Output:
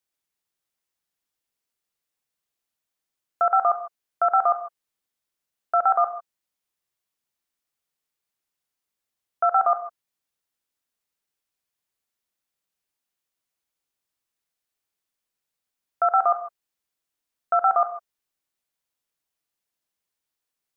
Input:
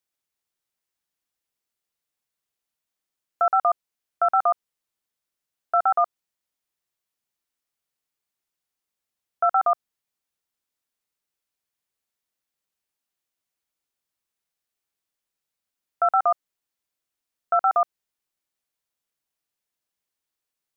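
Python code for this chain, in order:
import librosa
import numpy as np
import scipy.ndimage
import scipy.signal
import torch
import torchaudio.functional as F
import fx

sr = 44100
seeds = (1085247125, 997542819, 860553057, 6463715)

y = fx.rev_gated(x, sr, seeds[0], gate_ms=170, shape='rising', drr_db=10.0)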